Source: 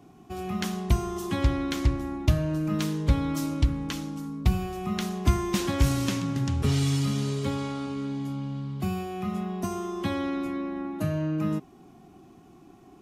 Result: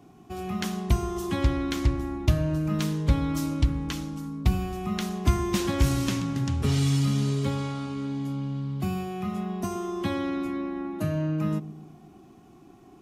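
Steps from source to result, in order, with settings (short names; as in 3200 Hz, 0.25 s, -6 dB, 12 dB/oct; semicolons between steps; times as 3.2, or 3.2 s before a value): dark delay 0.123 s, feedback 50%, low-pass 510 Hz, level -13.5 dB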